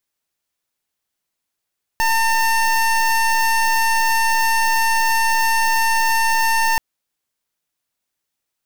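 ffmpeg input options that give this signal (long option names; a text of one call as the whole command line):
ffmpeg -f lavfi -i "aevalsrc='0.15*(2*lt(mod(903*t,1),0.24)-1)':duration=4.78:sample_rate=44100" out.wav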